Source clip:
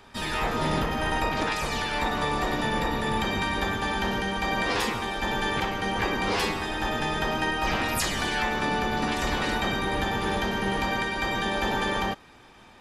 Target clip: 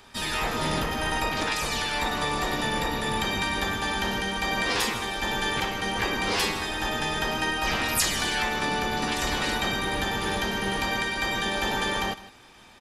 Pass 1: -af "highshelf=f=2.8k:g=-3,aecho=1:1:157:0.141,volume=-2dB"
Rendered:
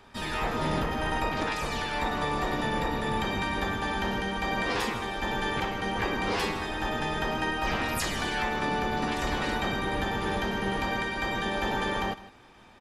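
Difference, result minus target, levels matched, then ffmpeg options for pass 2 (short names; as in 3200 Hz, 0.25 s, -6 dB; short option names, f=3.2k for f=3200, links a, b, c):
4000 Hz band -4.0 dB
-af "highshelf=f=2.8k:g=8.5,aecho=1:1:157:0.141,volume=-2dB"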